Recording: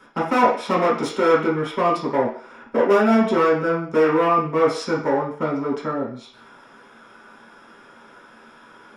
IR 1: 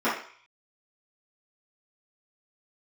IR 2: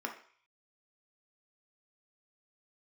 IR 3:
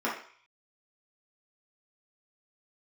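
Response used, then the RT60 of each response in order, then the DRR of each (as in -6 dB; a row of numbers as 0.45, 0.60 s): 3; 0.50, 0.50, 0.50 s; -14.0, 1.5, -7.5 dB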